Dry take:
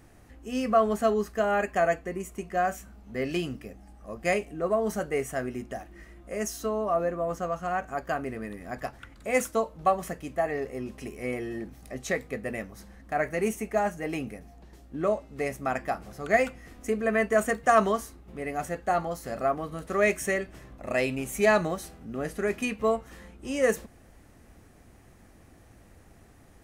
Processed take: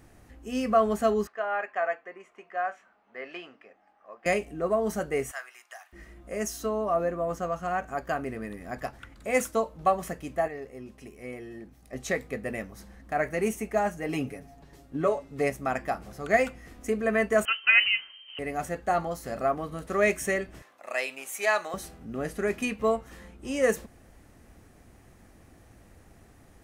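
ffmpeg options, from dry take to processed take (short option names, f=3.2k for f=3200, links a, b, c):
-filter_complex "[0:a]asettb=1/sr,asplit=3[a][b][c];[a]atrim=end=1.274[d];[b]atrim=start=1.27:end=4.26,asetpts=PTS-STARTPTS,afade=t=in:d=0.004:c=qsin,afade=t=out:st=2.986:d=0.004:c=qsin,highpass=780,lowpass=2.1k[e];[c]atrim=start=4.256[f];[d][e]acrossfade=d=0.004:c1=hsin:c2=qsin[g];[g][f]acrossfade=d=0.004:c1=qsin:c2=hsin,asettb=1/sr,asplit=3[h][i][j];[h]atrim=end=5.314[k];[i]atrim=start=5.31:end=5.93,asetpts=PTS-STARTPTS,afade=t=in:d=0.004:c=qsin,afade=t=out:st=0.616:d=0.004:c=qsin,highpass=f=950:w=0.5412,highpass=f=950:w=1.3066[l];[j]atrim=start=5.926[m];[k][l]acrossfade=d=0.004:c1=hsin:c2=qsin[n];[n][m]acrossfade=d=0.004:c1=qsin:c2=hsin,asettb=1/sr,asplit=3[o][p][q];[o]atrim=end=14.084[r];[p]atrim=start=14.08:end=15.5,asetpts=PTS-STARTPTS,afade=t=in:d=0.004:c=qsin,afade=t=out:st=1.416:d=0.004:c=qsin,aecho=1:1:7.1:0.65,atrim=end_sample=62622[s];[q]atrim=start=15.496[t];[r][s]acrossfade=d=0.004:c1=hsin:c2=qsin[u];[u][t]acrossfade=d=0.004:c1=qsin:c2=hsin,asettb=1/sr,asplit=3[v][w][x];[v]atrim=end=17.454[y];[w]atrim=start=17.45:end=18.39,asetpts=PTS-STARTPTS,afade=t=in:d=0.004:c=qsin,afade=t=out:st=0.936:d=0.004:c=qsin,lowpass=f=2.7k:t=q:w=0.5098,lowpass=f=2.7k:t=q:w=0.6013,lowpass=f=2.7k:t=q:w=0.9,lowpass=f=2.7k:t=q:w=2.563,afreqshift=-3200[z];[x]atrim=start=18.386[aa];[y][z]acrossfade=d=0.004:c1=hsin:c2=qsin[ab];[ab][aa]acrossfade=d=0.004:c1=qsin:c2=hsin,asettb=1/sr,asplit=3[ac][ad][ae];[ac]atrim=end=20.624[af];[ad]atrim=start=20.62:end=21.74,asetpts=PTS-STARTPTS,afade=t=in:d=0.004:c=qsin,afade=t=out:st=1.116:d=0.004:c=qsin,highpass=760[ag];[ae]atrim=start=21.736[ah];[af][ag]acrossfade=d=0.004:c1=hsin:c2=qsin[ai];[ai][ah]acrossfade=d=0.004:c1=qsin:c2=hsin,asplit=3[aj][ak][al];[aj]atrim=end=10.482[am];[ak]atrim=start=10.478:end=11.932,asetpts=PTS-STARTPTS,volume=-7.5dB[an];[al]atrim=start=11.928[ao];[am][an]acrossfade=d=0.004:c1=hsin:c2=hsin[ap];[ap][ao]acrossfade=d=0.004:c1=hsin:c2=hsin"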